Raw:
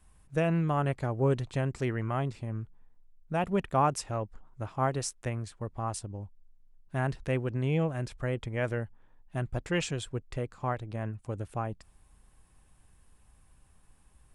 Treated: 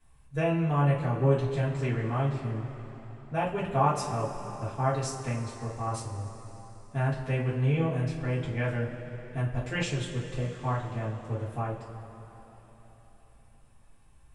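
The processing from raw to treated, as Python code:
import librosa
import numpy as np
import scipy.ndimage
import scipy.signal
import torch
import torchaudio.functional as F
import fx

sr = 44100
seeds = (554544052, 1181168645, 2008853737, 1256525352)

y = fx.high_shelf(x, sr, hz=8600.0, db=-8.5)
y = fx.rev_double_slope(y, sr, seeds[0], early_s=0.29, late_s=4.1, knee_db=-18, drr_db=-9.0)
y = y * 10.0 ** (-7.5 / 20.0)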